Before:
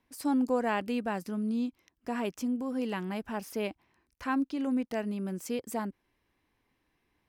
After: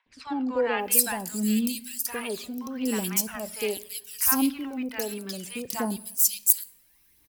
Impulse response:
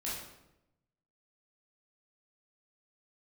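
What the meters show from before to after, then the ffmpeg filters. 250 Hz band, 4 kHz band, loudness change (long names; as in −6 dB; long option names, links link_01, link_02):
+2.0 dB, +11.5 dB, +7.0 dB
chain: -filter_complex "[0:a]highshelf=frequency=2300:gain=9.5,aphaser=in_gain=1:out_gain=1:delay=2.5:decay=0.54:speed=0.69:type=triangular,aemphasis=mode=production:type=75fm,acrossover=split=840|3100[link_01][link_02][link_03];[link_01]adelay=60[link_04];[link_03]adelay=790[link_05];[link_04][link_02][link_05]amix=inputs=3:normalize=0,asplit=2[link_06][link_07];[1:a]atrim=start_sample=2205,lowshelf=frequency=190:gain=8.5[link_08];[link_07][link_08]afir=irnorm=-1:irlink=0,volume=-19.5dB[link_09];[link_06][link_09]amix=inputs=2:normalize=0"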